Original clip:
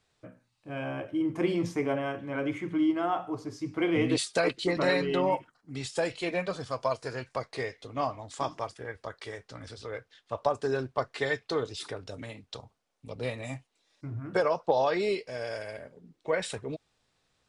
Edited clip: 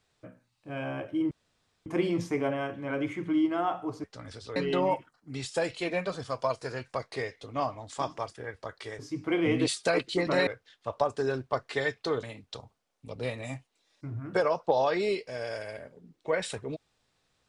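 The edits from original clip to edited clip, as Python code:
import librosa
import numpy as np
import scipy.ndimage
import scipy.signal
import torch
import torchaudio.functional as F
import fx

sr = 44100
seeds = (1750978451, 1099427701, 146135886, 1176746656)

y = fx.edit(x, sr, fx.insert_room_tone(at_s=1.31, length_s=0.55),
    fx.swap(start_s=3.49, length_s=1.48, other_s=9.4, other_length_s=0.52),
    fx.cut(start_s=11.68, length_s=0.55), tone=tone)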